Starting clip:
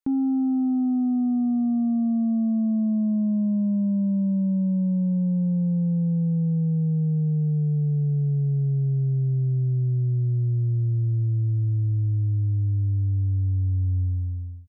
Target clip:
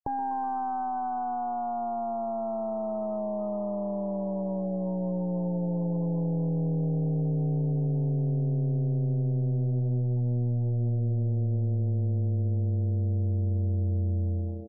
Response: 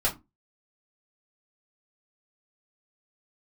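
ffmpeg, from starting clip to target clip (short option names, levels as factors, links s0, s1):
-filter_complex "[0:a]firequalizer=gain_entry='entry(140,0);entry(250,-24);entry(360,-1);entry(630,12);entry(900,15);entry(1600,-15)':delay=0.05:min_phase=1,acompressor=threshold=0.0501:ratio=12,asplit=2[s0][s1];[s1]acrusher=bits=4:dc=4:mix=0:aa=0.000001,volume=0.355[s2];[s0][s2]amix=inputs=2:normalize=0,asplit=8[s3][s4][s5][s6][s7][s8][s9][s10];[s4]adelay=123,afreqshift=120,volume=0.2[s11];[s5]adelay=246,afreqshift=240,volume=0.126[s12];[s6]adelay=369,afreqshift=360,volume=0.0794[s13];[s7]adelay=492,afreqshift=480,volume=0.0501[s14];[s8]adelay=615,afreqshift=600,volume=0.0313[s15];[s9]adelay=738,afreqshift=720,volume=0.0197[s16];[s10]adelay=861,afreqshift=840,volume=0.0124[s17];[s3][s11][s12][s13][s14][s15][s16][s17]amix=inputs=8:normalize=0,afftdn=nr=36:nf=-39"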